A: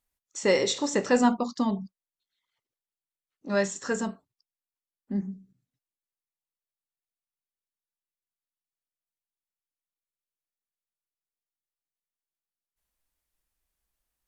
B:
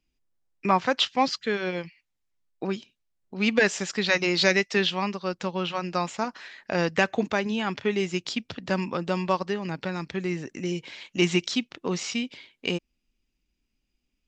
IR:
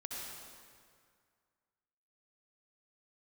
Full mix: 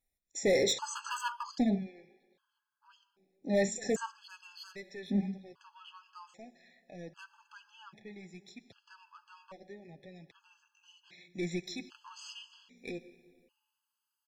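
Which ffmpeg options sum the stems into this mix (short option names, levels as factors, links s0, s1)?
-filter_complex "[0:a]volume=0.944,asplit=2[s0][s1];[1:a]asoftclip=type=tanh:threshold=0.112,flanger=delay=5.4:depth=3.2:regen=-34:speed=0.27:shape=triangular,adelay=200,volume=0.447,afade=t=in:st=10.77:d=0.75:silence=0.354813,asplit=2[s2][s3];[s3]volume=0.251[s4];[s1]apad=whole_len=638343[s5];[s2][s5]sidechaincompress=threshold=0.0631:ratio=8:attack=7.1:release=1330[s6];[2:a]atrim=start_sample=2205[s7];[s4][s7]afir=irnorm=-1:irlink=0[s8];[s0][s6][s8]amix=inputs=3:normalize=0,volume=13.3,asoftclip=hard,volume=0.075,afftfilt=real='re*gt(sin(2*PI*0.63*pts/sr)*(1-2*mod(floor(b*sr/1024/850),2)),0)':imag='im*gt(sin(2*PI*0.63*pts/sr)*(1-2*mod(floor(b*sr/1024/850),2)),0)':win_size=1024:overlap=0.75"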